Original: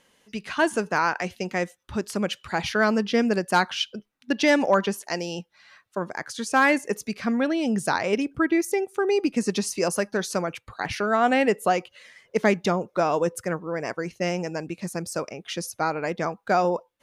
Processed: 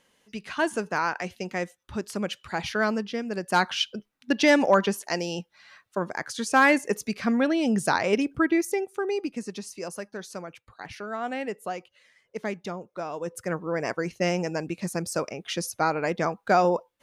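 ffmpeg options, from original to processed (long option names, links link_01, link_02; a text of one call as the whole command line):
ffmpeg -i in.wav -af "volume=20.5dB,afade=type=out:start_time=2.86:duration=0.39:silence=0.398107,afade=type=in:start_time=3.25:duration=0.45:silence=0.251189,afade=type=out:start_time=8.28:duration=1.22:silence=0.266073,afade=type=in:start_time=13.2:duration=0.48:silence=0.251189" out.wav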